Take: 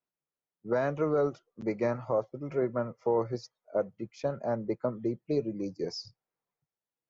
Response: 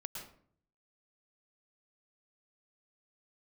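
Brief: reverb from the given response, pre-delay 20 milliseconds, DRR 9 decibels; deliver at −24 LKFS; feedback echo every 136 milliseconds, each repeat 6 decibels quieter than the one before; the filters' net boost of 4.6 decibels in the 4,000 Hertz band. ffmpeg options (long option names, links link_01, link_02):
-filter_complex "[0:a]equalizer=frequency=4000:width_type=o:gain=6.5,aecho=1:1:136|272|408|544|680|816:0.501|0.251|0.125|0.0626|0.0313|0.0157,asplit=2[link_01][link_02];[1:a]atrim=start_sample=2205,adelay=20[link_03];[link_02][link_03]afir=irnorm=-1:irlink=0,volume=-7.5dB[link_04];[link_01][link_04]amix=inputs=2:normalize=0,volume=6.5dB"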